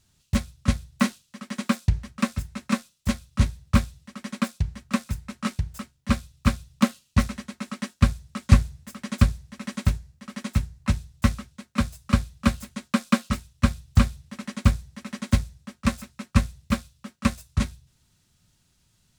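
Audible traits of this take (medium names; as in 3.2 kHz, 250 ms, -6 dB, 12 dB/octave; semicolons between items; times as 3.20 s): noise floor -67 dBFS; spectral tilt -6.0 dB/octave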